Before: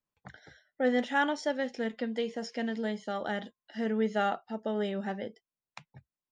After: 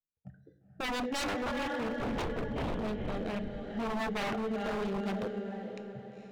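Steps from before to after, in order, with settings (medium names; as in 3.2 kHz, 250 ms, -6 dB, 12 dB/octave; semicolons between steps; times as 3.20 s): local Wiener filter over 41 samples; spectral noise reduction 14 dB; in parallel at -2 dB: peak limiter -27.5 dBFS, peak gain reduction 11 dB; on the sum: rotary cabinet horn 0.7 Hz; 1.90–2.79 s: LPC vocoder at 8 kHz whisper; echo that smears into a reverb 467 ms, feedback 47%, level -7 dB; on a send at -11 dB: reverberation RT60 0.70 s, pre-delay 6 ms; on the sum: wavefolder -28.5 dBFS; 3.93–5.23 s: three bands compressed up and down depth 40%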